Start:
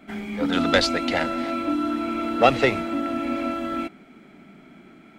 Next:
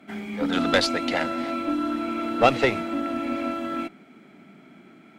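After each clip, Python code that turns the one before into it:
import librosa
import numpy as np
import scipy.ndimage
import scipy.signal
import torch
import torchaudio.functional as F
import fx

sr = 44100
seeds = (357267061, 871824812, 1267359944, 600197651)

y = scipy.signal.sosfilt(scipy.signal.butter(2, 99.0, 'highpass', fs=sr, output='sos'), x)
y = fx.cheby_harmonics(y, sr, harmonics=(4,), levels_db=(-21,), full_scale_db=-3.0)
y = y * 10.0 ** (-1.5 / 20.0)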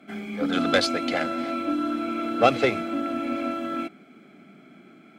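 y = fx.notch_comb(x, sr, f0_hz=930.0)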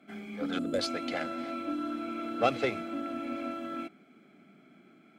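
y = fx.spec_box(x, sr, start_s=0.59, length_s=0.2, low_hz=650.0, high_hz=6700.0, gain_db=-14)
y = y * 10.0 ** (-8.0 / 20.0)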